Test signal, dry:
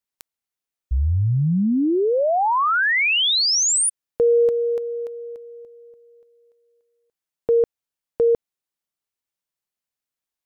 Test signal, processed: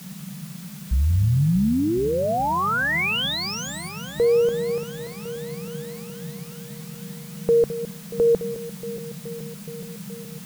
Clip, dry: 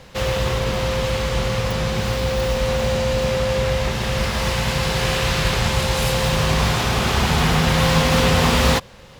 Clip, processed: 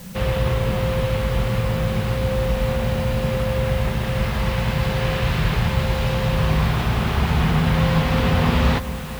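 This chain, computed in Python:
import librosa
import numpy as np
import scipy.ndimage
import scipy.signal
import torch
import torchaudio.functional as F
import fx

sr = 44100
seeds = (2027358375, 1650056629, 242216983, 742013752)

p1 = scipy.signal.sosfilt(scipy.signal.butter(2, 5400.0, 'lowpass', fs=sr, output='sos'), x)
p2 = fx.bass_treble(p1, sr, bass_db=5, treble_db=-9)
p3 = fx.rider(p2, sr, range_db=10, speed_s=2.0)
p4 = p2 + (p3 * librosa.db_to_amplitude(-3.0))
p5 = fx.dmg_noise_band(p4, sr, seeds[0], low_hz=140.0, high_hz=210.0, level_db=-29.0)
p6 = fx.quant_dither(p5, sr, seeds[1], bits=6, dither='triangular')
p7 = p6 + fx.echo_alternate(p6, sr, ms=211, hz=900.0, feedback_pct=85, wet_db=-13.0, dry=0)
y = p7 * librosa.db_to_amplitude(-8.5)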